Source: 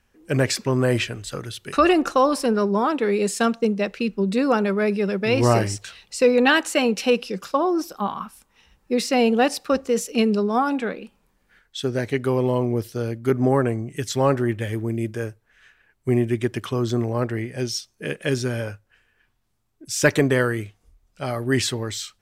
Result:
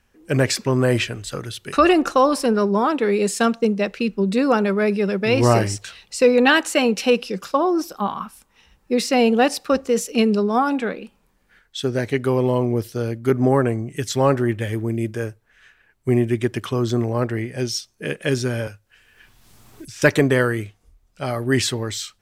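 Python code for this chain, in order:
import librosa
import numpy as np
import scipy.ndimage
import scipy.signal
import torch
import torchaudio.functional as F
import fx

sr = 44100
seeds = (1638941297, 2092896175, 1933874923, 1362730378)

y = fx.band_squash(x, sr, depth_pct=100, at=(18.67, 20.02))
y = y * 10.0 ** (2.0 / 20.0)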